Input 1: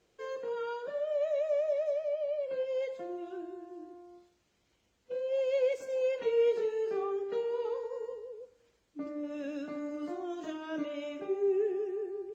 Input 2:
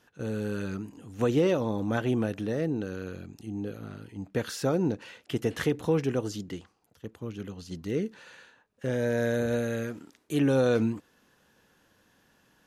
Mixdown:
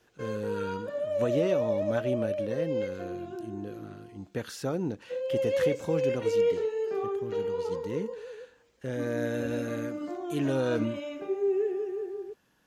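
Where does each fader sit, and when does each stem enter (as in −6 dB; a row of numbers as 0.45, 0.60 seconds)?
+2.0, −4.5 decibels; 0.00, 0.00 seconds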